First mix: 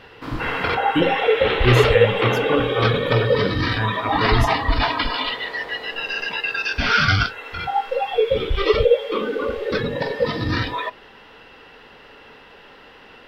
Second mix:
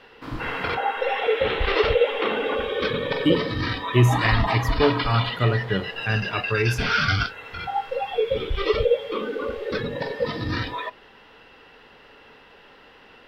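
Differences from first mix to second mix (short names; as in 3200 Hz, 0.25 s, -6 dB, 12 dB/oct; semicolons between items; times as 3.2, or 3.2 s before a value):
speech: entry +2.30 s; background -4.5 dB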